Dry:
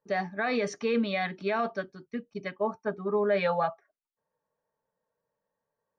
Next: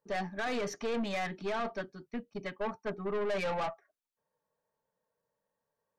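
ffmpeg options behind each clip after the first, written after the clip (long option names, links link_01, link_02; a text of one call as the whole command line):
ffmpeg -i in.wav -af "aeval=exprs='(tanh(31.6*val(0)+0.35)-tanh(0.35))/31.6':channel_layout=same" out.wav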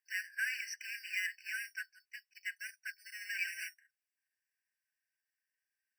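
ffmpeg -i in.wav -filter_complex "[0:a]asplit=2[link_01][link_02];[link_02]acrusher=samples=9:mix=1:aa=0.000001,volume=-4.5dB[link_03];[link_01][link_03]amix=inputs=2:normalize=0,afftfilt=real='re*eq(mod(floor(b*sr/1024/1500),2),1)':imag='im*eq(mod(floor(b*sr/1024/1500),2),1)':win_size=1024:overlap=0.75,volume=1.5dB" out.wav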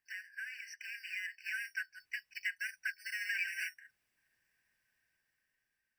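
ffmpeg -i in.wav -af "acompressor=threshold=-51dB:ratio=3,bass=frequency=250:gain=8,treble=frequency=4000:gain=-7,dynaudnorm=framelen=560:gausssize=5:maxgain=9dB,volume=5dB" out.wav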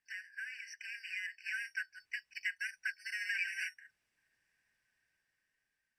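ffmpeg -i in.wav -af "lowpass=9600" out.wav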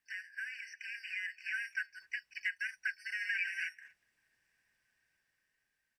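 ffmpeg -i in.wav -filter_complex "[0:a]acrossover=split=3300[link_01][link_02];[link_02]acompressor=threshold=-57dB:ratio=4:attack=1:release=60[link_03];[link_01][link_03]amix=inputs=2:normalize=0,asoftclip=type=hard:threshold=-26.5dB,asplit=2[link_04][link_05];[link_05]adelay=240,highpass=300,lowpass=3400,asoftclip=type=hard:threshold=-36dB,volume=-24dB[link_06];[link_04][link_06]amix=inputs=2:normalize=0,volume=2dB" out.wav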